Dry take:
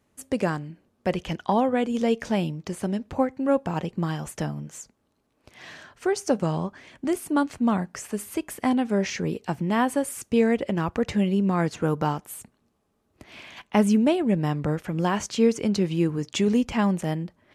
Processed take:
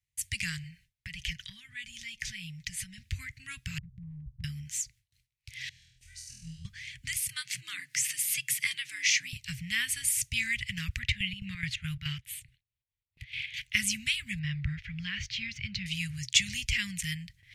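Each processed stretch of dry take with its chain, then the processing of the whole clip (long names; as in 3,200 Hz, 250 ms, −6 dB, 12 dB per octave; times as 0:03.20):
0:00.63–0:02.98: parametric band 1,800 Hz +4 dB 0.44 octaves + comb filter 5.2 ms, depth 47% + downward compressor 3 to 1, threshold −35 dBFS
0:03.78–0:04.44: variable-slope delta modulation 16 kbit/s + Chebyshev low-pass filter 950 Hz, order 6 + downward compressor 5 to 1, threshold −32 dBFS
0:05.69–0:06.65: guitar amp tone stack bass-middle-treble 10-0-1 + flutter between parallel walls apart 4.2 metres, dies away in 0.77 s
0:07.29–0:09.33: upward compression, threshold −29 dBFS + frequency shifter +94 Hz
0:10.99–0:13.54: square-wave tremolo 4.7 Hz, depth 60%, duty 60% + high shelf with overshoot 4,400 Hz −8.5 dB, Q 1.5
0:14.39–0:15.86: running median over 3 samples + high-frequency loss of the air 260 metres
whole clip: Chebyshev band-stop filter 130–2,000 Hz, order 4; noise gate with hold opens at −59 dBFS; dynamic equaliser 140 Hz, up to −6 dB, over −53 dBFS, Q 2.7; level +8 dB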